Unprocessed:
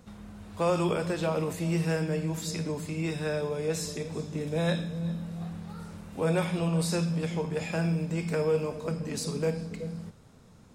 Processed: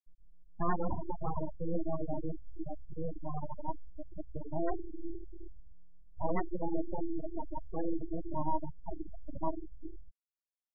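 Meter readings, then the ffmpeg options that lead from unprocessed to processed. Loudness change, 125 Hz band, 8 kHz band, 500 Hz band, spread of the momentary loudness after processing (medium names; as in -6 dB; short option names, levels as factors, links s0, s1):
-9.0 dB, -13.5 dB, under -40 dB, -10.5 dB, 12 LU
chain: -af "aeval=exprs='abs(val(0))':c=same,afftfilt=real='re*gte(hypot(re,im),0.0891)':imag='im*gte(hypot(re,im),0.0891)':win_size=1024:overlap=0.75,volume=0.891"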